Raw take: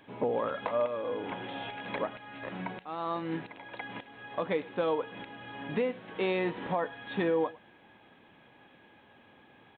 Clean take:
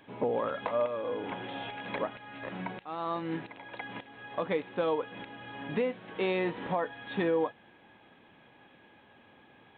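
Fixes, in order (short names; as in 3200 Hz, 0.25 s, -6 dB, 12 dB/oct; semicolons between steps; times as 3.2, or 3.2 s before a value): inverse comb 0.104 s -22 dB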